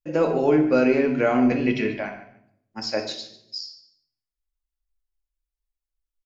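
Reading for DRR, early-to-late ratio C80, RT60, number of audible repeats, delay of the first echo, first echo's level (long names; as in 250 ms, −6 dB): 4.0 dB, 10.5 dB, 0.70 s, 2, 146 ms, −15.5 dB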